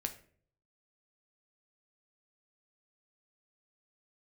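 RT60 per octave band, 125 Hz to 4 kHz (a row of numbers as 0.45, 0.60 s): 0.85, 0.65, 0.60, 0.40, 0.45, 0.35 s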